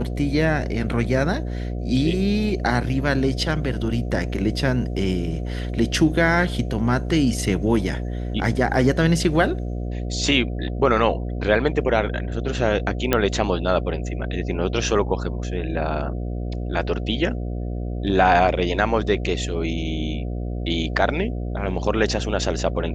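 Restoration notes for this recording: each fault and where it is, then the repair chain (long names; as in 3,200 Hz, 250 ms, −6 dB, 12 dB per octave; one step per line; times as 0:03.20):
mains buzz 60 Hz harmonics 12 −27 dBFS
0:13.13: click −4 dBFS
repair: click removal
hum removal 60 Hz, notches 12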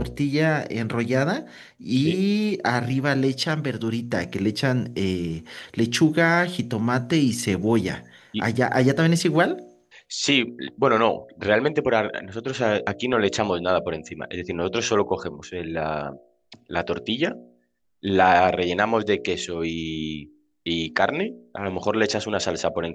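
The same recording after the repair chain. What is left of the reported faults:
none of them is left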